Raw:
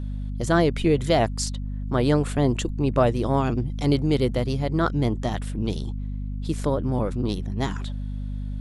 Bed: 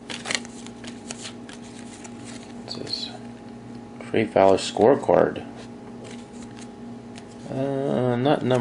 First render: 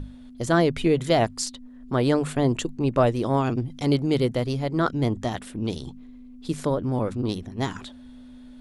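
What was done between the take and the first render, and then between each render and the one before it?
hum notches 50/100/150/200 Hz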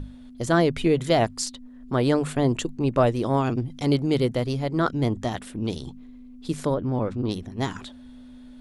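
6.74–7.31 s: distance through air 100 m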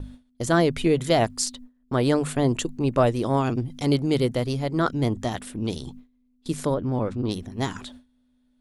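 gate with hold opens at -32 dBFS; treble shelf 8.1 kHz +7.5 dB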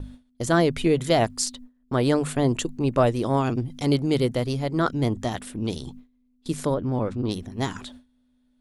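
no audible change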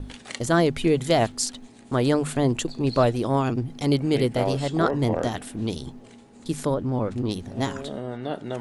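add bed -10.5 dB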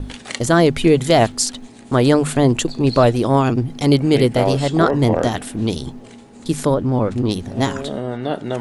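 trim +7.5 dB; peak limiter -3 dBFS, peak gain reduction 3 dB

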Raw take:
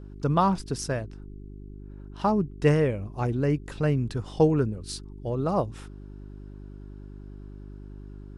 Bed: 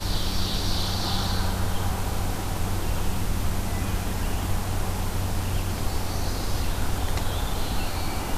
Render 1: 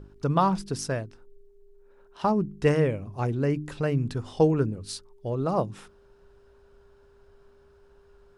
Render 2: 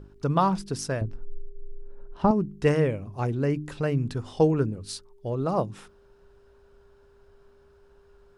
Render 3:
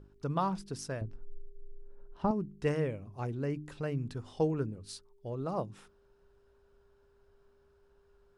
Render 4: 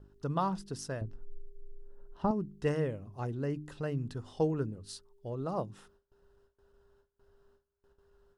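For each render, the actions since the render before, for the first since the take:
de-hum 50 Hz, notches 7
1.01–2.31 s: tilt EQ -3.5 dB/octave
trim -9 dB
band-stop 2.3 kHz, Q 6.1; gate with hold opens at -56 dBFS

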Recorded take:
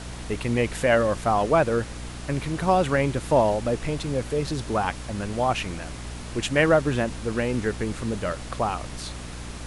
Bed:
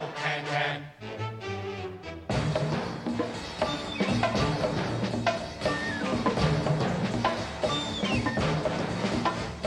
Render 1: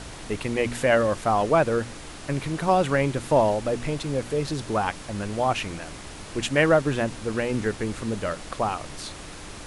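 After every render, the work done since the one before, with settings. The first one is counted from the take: de-hum 60 Hz, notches 4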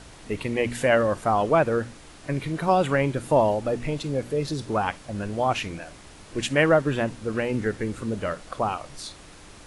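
noise print and reduce 7 dB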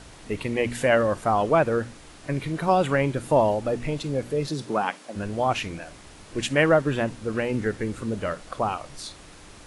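4.48–5.15 s: high-pass 100 Hz -> 260 Hz 24 dB/octave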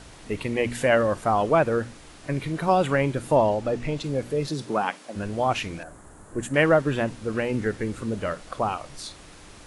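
3.36–4.04 s: low-pass 8.3 kHz; 5.83–6.54 s: high-order bell 3.5 kHz -15.5 dB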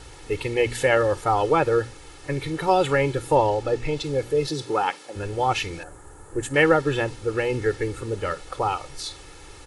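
dynamic bell 4.3 kHz, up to +4 dB, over -46 dBFS, Q 1.3; comb 2.3 ms, depth 76%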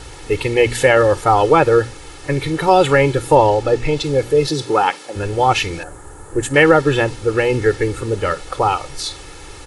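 trim +8 dB; peak limiter -1 dBFS, peak gain reduction 3 dB

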